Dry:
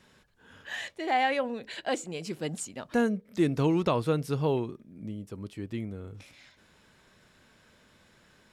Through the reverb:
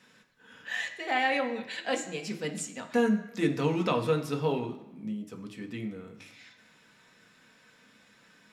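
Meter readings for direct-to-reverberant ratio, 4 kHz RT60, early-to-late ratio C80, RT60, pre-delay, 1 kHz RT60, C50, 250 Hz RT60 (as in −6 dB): 3.0 dB, 0.90 s, 13.5 dB, 1.0 s, 3 ms, 1.0 s, 10.5 dB, 0.85 s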